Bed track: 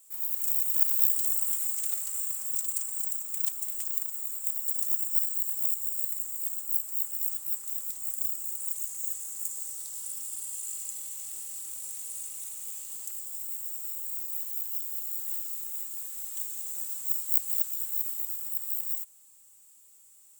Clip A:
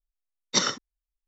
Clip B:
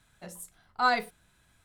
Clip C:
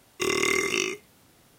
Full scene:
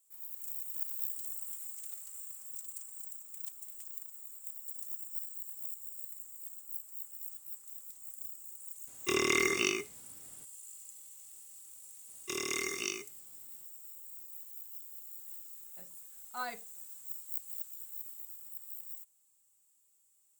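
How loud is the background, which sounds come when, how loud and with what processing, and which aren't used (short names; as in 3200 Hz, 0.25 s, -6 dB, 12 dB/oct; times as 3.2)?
bed track -13.5 dB
8.87 add C -4.5 dB
12.08 add C -13 dB + tone controls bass -1 dB, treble +8 dB
15.55 add B -14.5 dB + low shelf 170 Hz -6 dB
not used: A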